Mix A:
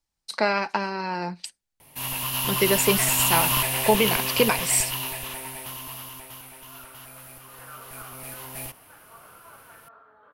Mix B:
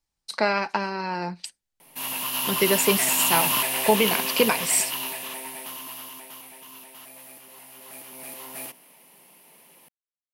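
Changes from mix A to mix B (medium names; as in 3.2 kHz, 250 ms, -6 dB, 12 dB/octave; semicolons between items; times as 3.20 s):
first sound: add brick-wall FIR high-pass 150 Hz; second sound: muted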